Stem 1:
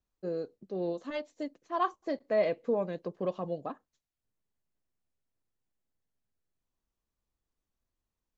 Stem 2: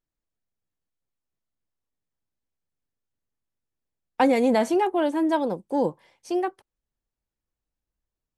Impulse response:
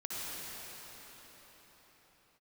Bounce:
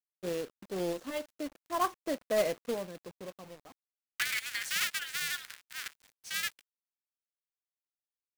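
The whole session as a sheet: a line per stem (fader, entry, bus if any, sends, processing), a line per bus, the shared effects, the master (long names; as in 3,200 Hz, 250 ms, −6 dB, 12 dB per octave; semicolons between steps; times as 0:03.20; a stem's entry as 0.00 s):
−1.0 dB, 0.00 s, no send, automatic ducking −23 dB, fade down 1.85 s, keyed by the second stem
−2.0 dB, 0.00 s, no send, sub-harmonics by changed cycles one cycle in 2, inverted; Butterworth high-pass 1,500 Hz 48 dB per octave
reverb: not used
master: log-companded quantiser 4 bits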